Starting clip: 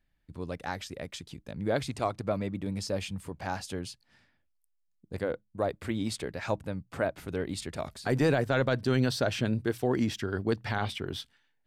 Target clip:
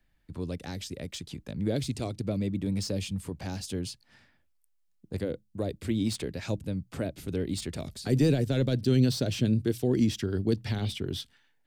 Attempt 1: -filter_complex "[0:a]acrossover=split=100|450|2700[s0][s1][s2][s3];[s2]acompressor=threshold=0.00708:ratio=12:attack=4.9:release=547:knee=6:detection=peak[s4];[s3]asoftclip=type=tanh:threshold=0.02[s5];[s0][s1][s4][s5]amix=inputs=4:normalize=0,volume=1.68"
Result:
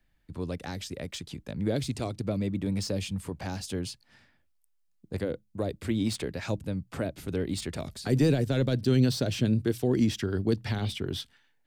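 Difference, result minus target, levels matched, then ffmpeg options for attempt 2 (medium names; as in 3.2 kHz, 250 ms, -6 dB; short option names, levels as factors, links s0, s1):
compression: peak gain reduction -6.5 dB
-filter_complex "[0:a]acrossover=split=100|450|2700[s0][s1][s2][s3];[s2]acompressor=threshold=0.00316:ratio=12:attack=4.9:release=547:knee=6:detection=peak[s4];[s3]asoftclip=type=tanh:threshold=0.02[s5];[s0][s1][s4][s5]amix=inputs=4:normalize=0,volume=1.68"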